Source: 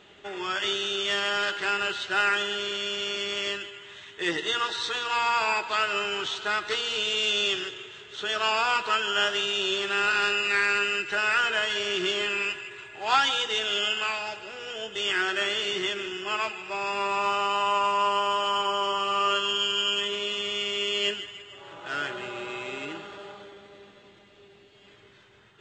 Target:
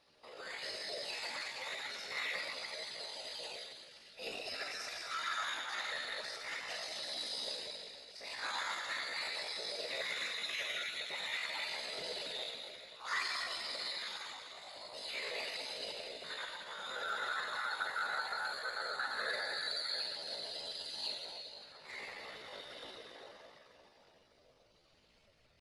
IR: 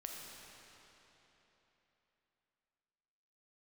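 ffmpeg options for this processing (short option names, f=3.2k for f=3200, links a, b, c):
-filter_complex "[1:a]atrim=start_sample=2205,asetrate=70560,aresample=44100[a];[0:a][a]afir=irnorm=-1:irlink=0,afftfilt=real='hypot(re,im)*cos(2*PI*random(0))':imag='hypot(re,im)*sin(2*PI*random(1))':win_size=512:overlap=0.75,asetrate=62367,aresample=44100,atempo=0.707107,volume=-1.5dB"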